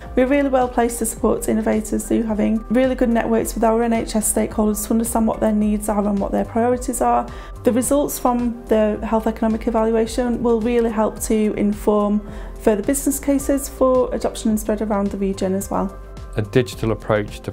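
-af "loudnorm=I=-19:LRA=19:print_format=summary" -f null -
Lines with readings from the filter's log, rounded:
Input Integrated:    -19.7 LUFS
Input True Peak:      -1.9 dBTP
Input LRA:             3.3 LU
Input Threshold:     -29.8 LUFS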